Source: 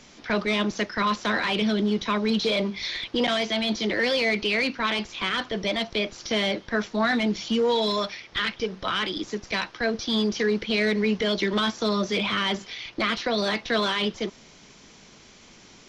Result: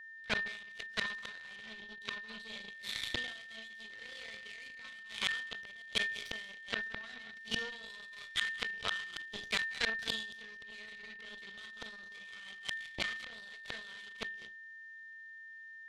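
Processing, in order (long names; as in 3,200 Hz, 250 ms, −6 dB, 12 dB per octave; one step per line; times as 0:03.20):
on a send: flutter between parallel walls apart 6.2 metres, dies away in 0.33 s
on the sum: reverb whose tail is shaped and stops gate 240 ms rising, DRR 4.5 dB
harmonic generator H 4 −26 dB, 7 −17 dB, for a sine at −3.5 dBFS
gate with flip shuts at −23 dBFS, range −28 dB
drawn EQ curve 130 Hz 0 dB, 300 Hz −7 dB, 470 Hz −3 dB, 950 Hz −3 dB, 3,700 Hz +9 dB, 5,600 Hz +1 dB
steady tone 1,800 Hz −52 dBFS
level that may fall only so fast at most 68 dB per second
level +4 dB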